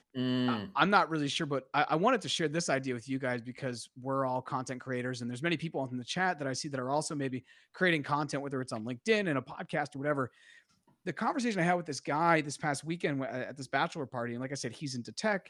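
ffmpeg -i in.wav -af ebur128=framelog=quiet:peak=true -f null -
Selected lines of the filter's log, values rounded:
Integrated loudness:
  I:         -32.6 LUFS
  Threshold: -42.8 LUFS
Loudness range:
  LRA:         4.3 LU
  Threshold: -53.1 LUFS
  LRA low:   -34.9 LUFS
  LRA high:  -30.5 LUFS
True peak:
  Peak:       -9.9 dBFS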